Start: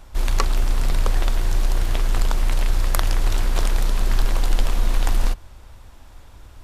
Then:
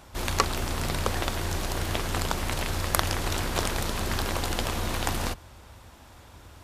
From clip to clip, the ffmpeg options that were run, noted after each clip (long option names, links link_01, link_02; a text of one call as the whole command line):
ffmpeg -i in.wav -af "highpass=81,volume=1dB" out.wav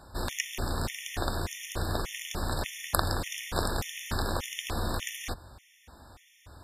ffmpeg -i in.wav -af "afftfilt=real='re*gt(sin(2*PI*1.7*pts/sr)*(1-2*mod(floor(b*sr/1024/1800),2)),0)':imag='im*gt(sin(2*PI*1.7*pts/sr)*(1-2*mod(floor(b*sr/1024/1800),2)),0)':win_size=1024:overlap=0.75,volume=-1dB" out.wav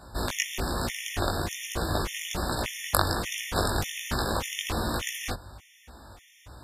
ffmpeg -i in.wav -af "flanger=delay=16.5:depth=3.6:speed=1.2,volume=7dB" out.wav